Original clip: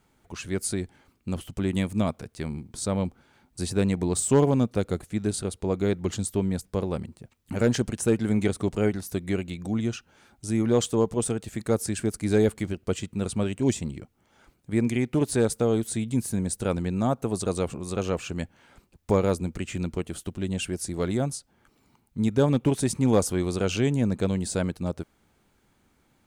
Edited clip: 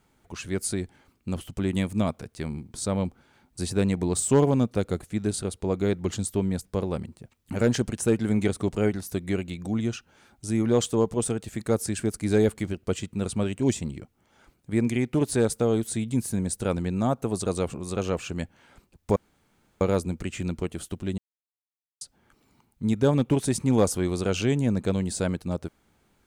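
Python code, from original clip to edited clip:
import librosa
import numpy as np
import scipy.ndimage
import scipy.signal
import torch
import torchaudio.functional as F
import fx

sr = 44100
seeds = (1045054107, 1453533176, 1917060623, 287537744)

y = fx.edit(x, sr, fx.insert_room_tone(at_s=19.16, length_s=0.65),
    fx.silence(start_s=20.53, length_s=0.83), tone=tone)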